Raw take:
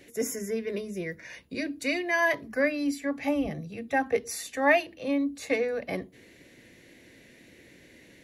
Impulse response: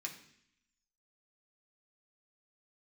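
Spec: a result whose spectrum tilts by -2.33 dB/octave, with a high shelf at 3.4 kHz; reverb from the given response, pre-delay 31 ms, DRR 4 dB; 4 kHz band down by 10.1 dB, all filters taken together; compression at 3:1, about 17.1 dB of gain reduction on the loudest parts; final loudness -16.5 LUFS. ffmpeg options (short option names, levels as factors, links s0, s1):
-filter_complex "[0:a]highshelf=f=3400:g=-7.5,equalizer=f=4000:t=o:g=-9,acompressor=threshold=0.00708:ratio=3,asplit=2[s0][s1];[1:a]atrim=start_sample=2205,adelay=31[s2];[s1][s2]afir=irnorm=-1:irlink=0,volume=0.708[s3];[s0][s3]amix=inputs=2:normalize=0,volume=20"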